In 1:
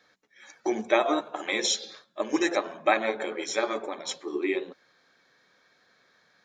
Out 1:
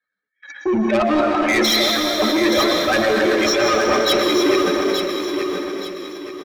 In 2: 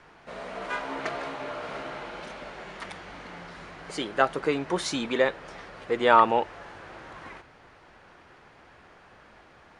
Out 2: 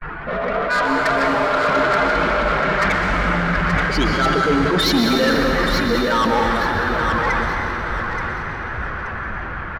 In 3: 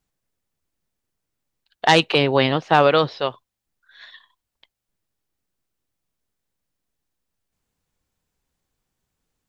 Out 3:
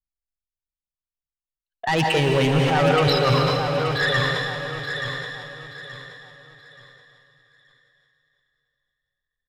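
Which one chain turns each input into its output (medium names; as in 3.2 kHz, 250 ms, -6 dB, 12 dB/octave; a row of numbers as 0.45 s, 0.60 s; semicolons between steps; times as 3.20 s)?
spectral contrast enhancement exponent 1.9; RIAA curve playback; gate -50 dBFS, range -44 dB; high-order bell 2.6 kHz +14 dB 2.7 oct; reverse; compression 10:1, threshold -25 dBFS; reverse; saturation -29.5 dBFS; on a send: feedback delay 877 ms, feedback 32%, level -7 dB; on the sum: plate-style reverb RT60 3.5 s, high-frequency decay 1×, pre-delay 105 ms, DRR 2 dB; decay stretcher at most 24 dB/s; peak normalisation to -6 dBFS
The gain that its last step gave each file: +14.5 dB, +14.0 dB, +12.5 dB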